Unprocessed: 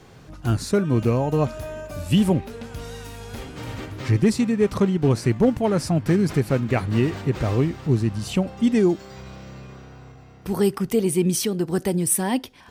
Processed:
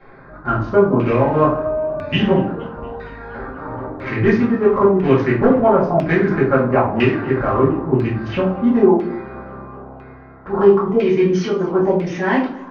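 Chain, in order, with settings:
adaptive Wiener filter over 15 samples
Chebyshev low-pass filter 6,600 Hz, order 10
parametric band 100 Hz −10.5 dB 2.9 octaves
convolution reverb RT60 0.55 s, pre-delay 4 ms, DRR −8 dB
auto-filter low-pass saw down 1 Hz 820–2,500 Hz
high-shelf EQ 3,800 Hz +11.5 dB
feedback echo with a swinging delay time 234 ms, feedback 63%, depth 124 cents, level −23.5 dB

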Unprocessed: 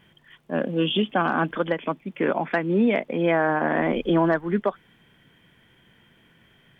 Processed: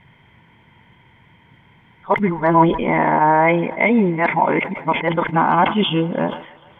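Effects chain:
played backwards from end to start
low-pass filter 3,300 Hz 6 dB per octave
parametric band 95 Hz +10 dB 1.5 octaves
hollow resonant body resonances 930/2,100 Hz, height 16 dB, ringing for 25 ms
on a send: feedback echo with a high-pass in the loop 149 ms, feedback 79%, high-pass 290 Hz, level −24 dB
on the sum: level that may fall only so fast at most 110 dB per second
level +2 dB

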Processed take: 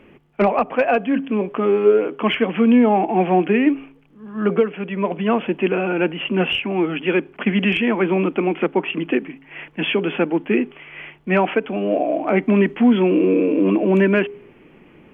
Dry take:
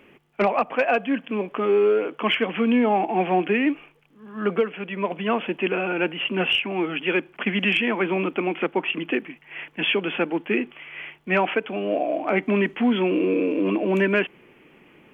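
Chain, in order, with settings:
spectral tilt −2 dB per octave
hum removal 136 Hz, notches 3
level +2.5 dB

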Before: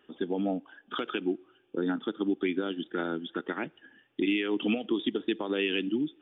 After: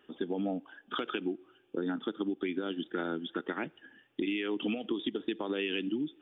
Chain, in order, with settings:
downward compressor, threshold −29 dBFS, peak gain reduction 6.5 dB

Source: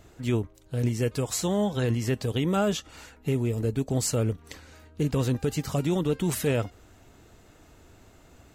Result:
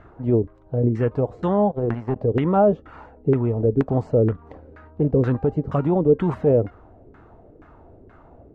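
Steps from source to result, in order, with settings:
0:01.71–0:02.16: power curve on the samples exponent 2
auto-filter low-pass saw down 2.1 Hz 370–1,600 Hz
level +4.5 dB

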